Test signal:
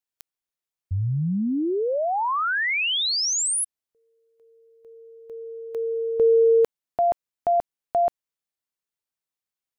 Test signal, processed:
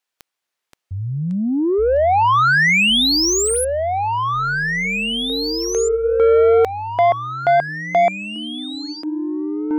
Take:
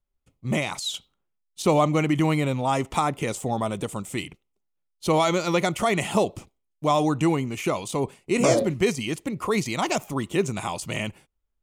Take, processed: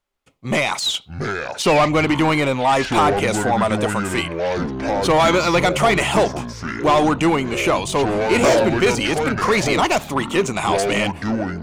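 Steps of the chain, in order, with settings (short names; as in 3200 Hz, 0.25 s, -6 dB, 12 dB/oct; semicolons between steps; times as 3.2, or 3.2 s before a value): overdrive pedal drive 20 dB, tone 3600 Hz, clips at -6.5 dBFS; echoes that change speed 0.422 s, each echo -7 st, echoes 3, each echo -6 dB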